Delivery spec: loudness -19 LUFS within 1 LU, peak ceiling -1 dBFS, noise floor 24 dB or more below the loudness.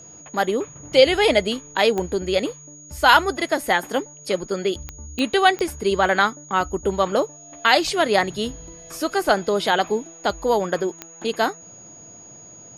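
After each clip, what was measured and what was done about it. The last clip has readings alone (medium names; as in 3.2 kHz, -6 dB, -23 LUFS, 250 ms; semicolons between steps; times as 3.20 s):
clicks found 5; steady tone 6.7 kHz; tone level -42 dBFS; loudness -21.0 LUFS; peak level -2.0 dBFS; loudness target -19.0 LUFS
-> de-click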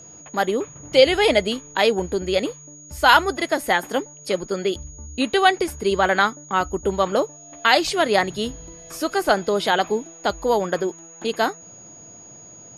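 clicks found 0; steady tone 6.7 kHz; tone level -42 dBFS
-> band-stop 6.7 kHz, Q 30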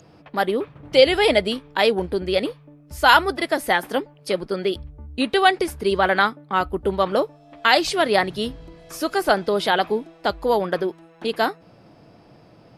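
steady tone not found; loudness -21.0 LUFS; peak level -2.0 dBFS; loudness target -19.0 LUFS
-> trim +2 dB; peak limiter -1 dBFS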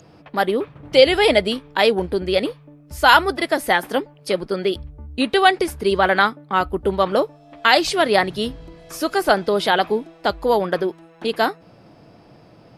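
loudness -19.0 LUFS; peak level -1.0 dBFS; noise floor -49 dBFS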